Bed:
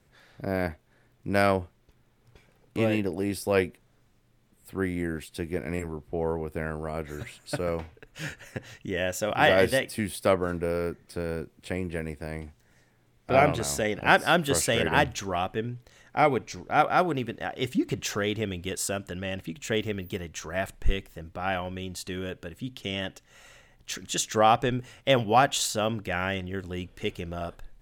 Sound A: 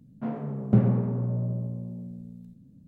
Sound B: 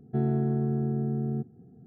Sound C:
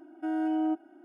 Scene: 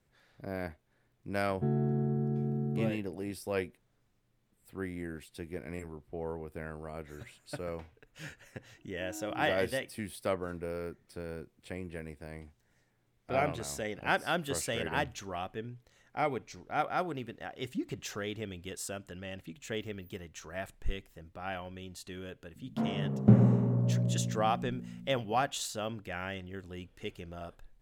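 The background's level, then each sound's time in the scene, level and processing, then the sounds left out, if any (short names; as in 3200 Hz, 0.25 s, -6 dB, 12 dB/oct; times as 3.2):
bed -9.5 dB
1.48 add B -4 dB
8.77 add C -16.5 dB
22.55 add A -0.5 dB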